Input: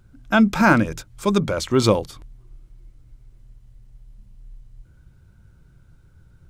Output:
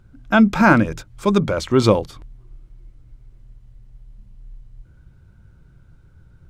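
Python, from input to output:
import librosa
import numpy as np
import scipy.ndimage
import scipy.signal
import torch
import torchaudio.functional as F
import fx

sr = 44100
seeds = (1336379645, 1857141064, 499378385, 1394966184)

y = fx.high_shelf(x, sr, hz=4900.0, db=-8.5)
y = y * 10.0 ** (2.5 / 20.0)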